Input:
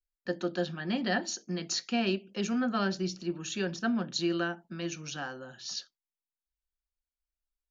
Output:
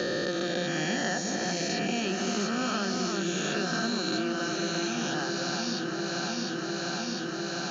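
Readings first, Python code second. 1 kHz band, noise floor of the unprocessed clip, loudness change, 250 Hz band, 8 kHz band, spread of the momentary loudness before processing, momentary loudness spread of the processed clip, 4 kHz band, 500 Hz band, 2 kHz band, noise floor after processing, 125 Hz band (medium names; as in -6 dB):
+5.5 dB, under -85 dBFS, +3.0 dB, +2.5 dB, no reading, 8 LU, 3 LU, +6.0 dB, +4.0 dB, +6.0 dB, -34 dBFS, +3.5 dB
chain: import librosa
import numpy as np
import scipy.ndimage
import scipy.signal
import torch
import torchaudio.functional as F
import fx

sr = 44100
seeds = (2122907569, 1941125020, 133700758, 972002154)

p1 = fx.spec_swells(x, sr, rise_s=2.4)
p2 = p1 + fx.echo_alternate(p1, sr, ms=351, hz=1800.0, feedback_pct=81, wet_db=-5, dry=0)
p3 = fx.band_squash(p2, sr, depth_pct=100)
y = p3 * librosa.db_to_amplitude(-4.0)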